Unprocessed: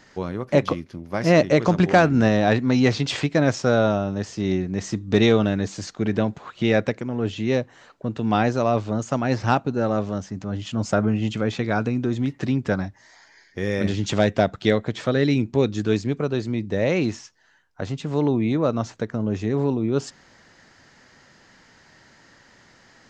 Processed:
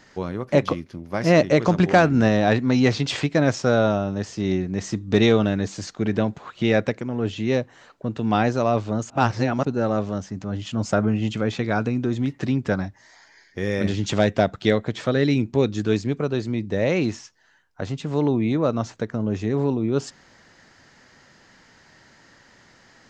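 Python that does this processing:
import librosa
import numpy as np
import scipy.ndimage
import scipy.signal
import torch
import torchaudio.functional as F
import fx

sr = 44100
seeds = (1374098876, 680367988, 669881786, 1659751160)

y = fx.edit(x, sr, fx.reverse_span(start_s=9.1, length_s=0.55), tone=tone)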